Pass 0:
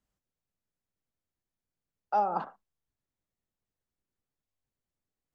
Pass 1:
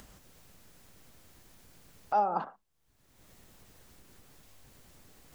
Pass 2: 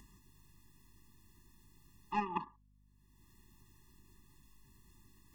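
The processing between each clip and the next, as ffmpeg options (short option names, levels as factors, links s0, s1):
-af "acompressor=mode=upward:threshold=0.0282:ratio=2.5"
-af "aeval=exprs='0.15*(cos(1*acos(clip(val(0)/0.15,-1,1)))-cos(1*PI/2))+0.0335*(cos(3*acos(clip(val(0)/0.15,-1,1)))-cos(3*PI/2))':c=same,aeval=exprs='val(0)+0.000282*(sin(2*PI*50*n/s)+sin(2*PI*2*50*n/s)/2+sin(2*PI*3*50*n/s)/3+sin(2*PI*4*50*n/s)/4+sin(2*PI*5*50*n/s)/5)':c=same,afftfilt=real='re*eq(mod(floor(b*sr/1024/410),2),0)':imag='im*eq(mod(floor(b*sr/1024/410),2),0)':win_size=1024:overlap=0.75,volume=1.58"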